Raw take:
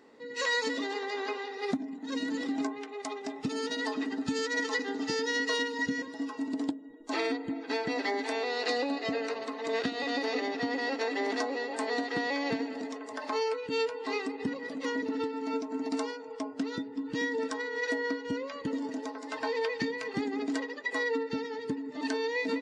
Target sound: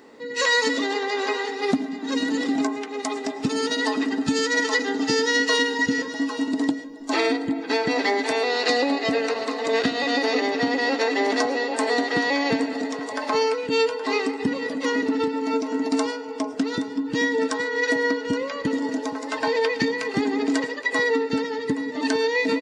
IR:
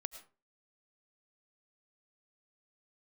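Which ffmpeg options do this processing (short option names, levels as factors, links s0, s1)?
-filter_complex "[0:a]aecho=1:1:821:0.178,asplit=2[s0][s1];[1:a]atrim=start_sample=2205,highshelf=f=7400:g=9.5[s2];[s1][s2]afir=irnorm=-1:irlink=0,volume=1.19[s3];[s0][s3]amix=inputs=2:normalize=0,volume=1.5"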